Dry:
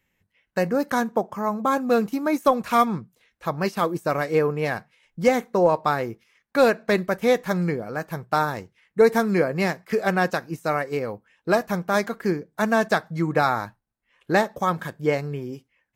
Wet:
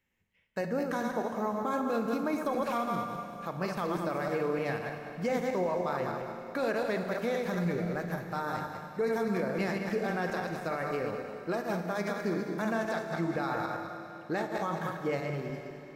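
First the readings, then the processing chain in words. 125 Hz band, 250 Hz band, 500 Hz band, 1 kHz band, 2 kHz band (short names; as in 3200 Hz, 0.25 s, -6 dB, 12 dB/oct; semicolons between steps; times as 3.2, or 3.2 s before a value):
-7.5 dB, -8.0 dB, -9.5 dB, -9.5 dB, -9.5 dB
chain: regenerating reverse delay 0.102 s, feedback 55%, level -6 dB; high shelf 7700 Hz -4 dB; notches 50/100/150 Hz; limiter -15.5 dBFS, peak gain reduction 10.5 dB; Schroeder reverb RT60 3.6 s, combs from 27 ms, DRR 6.5 dB; gain -7.5 dB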